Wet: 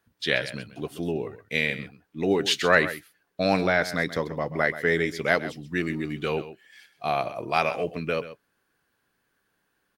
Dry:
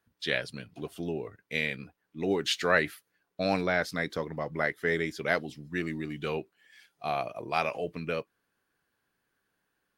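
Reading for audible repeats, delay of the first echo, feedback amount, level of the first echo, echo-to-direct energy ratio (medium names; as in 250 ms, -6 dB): 1, 131 ms, no regular repeats, -14.0 dB, -14.0 dB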